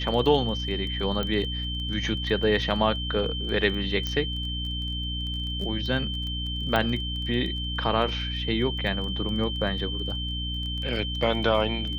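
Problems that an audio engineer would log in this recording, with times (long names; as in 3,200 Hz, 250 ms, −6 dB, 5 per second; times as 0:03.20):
surface crackle 15 per second −33 dBFS
mains hum 60 Hz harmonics 5 −32 dBFS
whistle 3,100 Hz −32 dBFS
0:01.23: click −16 dBFS
0:04.07: click −15 dBFS
0:06.76: click −12 dBFS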